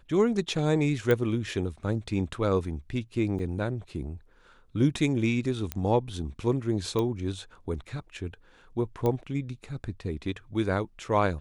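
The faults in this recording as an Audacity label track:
1.110000	1.110000	click −13 dBFS
3.390000	3.390000	drop-out 3.3 ms
5.720000	5.720000	click −14 dBFS
6.990000	6.990000	click −17 dBFS
9.060000	9.060000	click −16 dBFS

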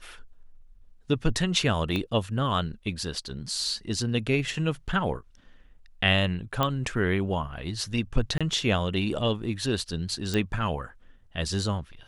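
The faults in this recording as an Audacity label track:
1.960000	1.960000	click −17 dBFS
6.630000	6.630000	click −11 dBFS
8.380000	8.410000	drop-out 26 ms
10.340000	10.340000	click

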